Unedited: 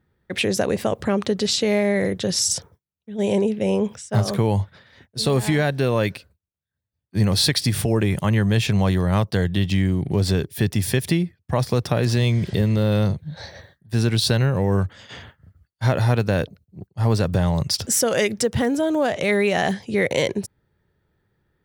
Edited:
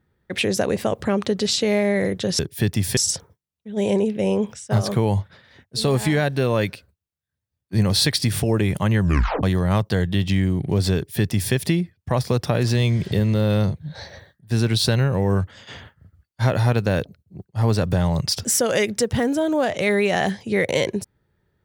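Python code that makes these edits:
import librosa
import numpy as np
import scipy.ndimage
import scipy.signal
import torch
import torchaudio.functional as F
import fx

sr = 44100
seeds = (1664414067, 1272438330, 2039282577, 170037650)

y = fx.edit(x, sr, fx.tape_stop(start_s=8.43, length_s=0.42),
    fx.duplicate(start_s=10.38, length_s=0.58, to_s=2.39), tone=tone)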